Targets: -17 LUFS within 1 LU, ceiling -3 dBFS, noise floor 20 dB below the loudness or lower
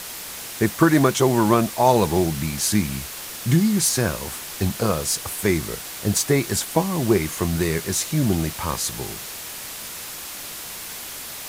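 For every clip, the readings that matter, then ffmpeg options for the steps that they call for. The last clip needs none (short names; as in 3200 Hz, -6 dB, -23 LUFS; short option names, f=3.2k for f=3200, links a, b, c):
noise floor -35 dBFS; noise floor target -43 dBFS; loudness -22.5 LUFS; peak -2.5 dBFS; loudness target -17.0 LUFS
-> -af "afftdn=nr=8:nf=-35"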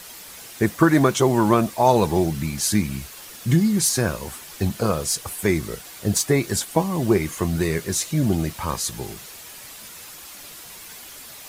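noise floor -41 dBFS; noise floor target -42 dBFS
-> -af "afftdn=nr=6:nf=-41"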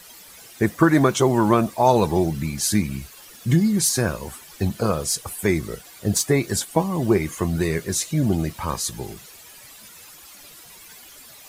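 noise floor -45 dBFS; loudness -21.5 LUFS; peak -3.0 dBFS; loudness target -17.0 LUFS
-> -af "volume=4.5dB,alimiter=limit=-3dB:level=0:latency=1"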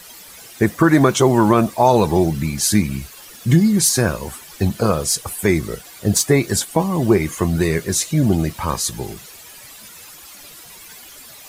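loudness -17.5 LUFS; peak -3.0 dBFS; noise floor -41 dBFS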